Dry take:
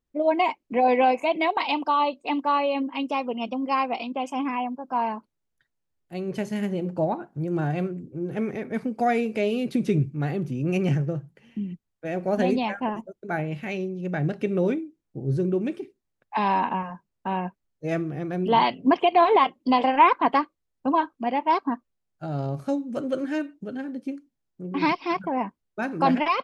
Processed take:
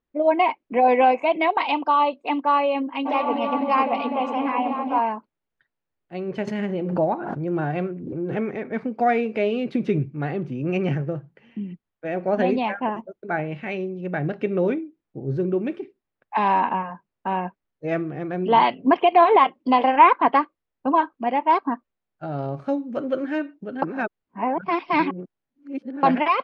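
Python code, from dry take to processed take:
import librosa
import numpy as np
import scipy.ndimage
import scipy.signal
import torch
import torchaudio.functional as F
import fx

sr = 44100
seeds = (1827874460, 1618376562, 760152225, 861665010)

y = fx.echo_opening(x, sr, ms=251, hz=200, octaves=1, feedback_pct=70, wet_db=0, at=(3.05, 4.98), fade=0.02)
y = fx.pre_swell(y, sr, db_per_s=35.0, at=(6.47, 8.49))
y = fx.edit(y, sr, fx.reverse_span(start_s=23.82, length_s=2.21), tone=tone)
y = scipy.signal.sosfilt(scipy.signal.butter(2, 2700.0, 'lowpass', fs=sr, output='sos'), y)
y = fx.low_shelf(y, sr, hz=200.0, db=-9.0)
y = y * 10.0 ** (4.0 / 20.0)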